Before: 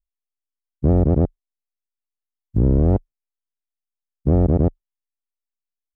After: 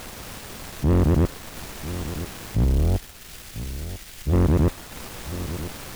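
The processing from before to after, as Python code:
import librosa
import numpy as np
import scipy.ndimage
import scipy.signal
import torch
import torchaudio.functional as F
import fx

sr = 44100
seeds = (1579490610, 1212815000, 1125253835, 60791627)

p1 = fx.dmg_noise_colour(x, sr, seeds[0], colour='pink', level_db=-40.0)
p2 = fx.transient(p1, sr, attack_db=-6, sustain_db=-2)
p3 = fx.graphic_eq(p2, sr, hz=(125, 250, 500, 1000), db=(-6, -11, -9, -10), at=(2.64, 4.33))
p4 = fx.leveller(p3, sr, passes=3)
p5 = p4 + fx.echo_single(p4, sr, ms=995, db=-12.5, dry=0)
y = p5 * librosa.db_to_amplitude(-6.5)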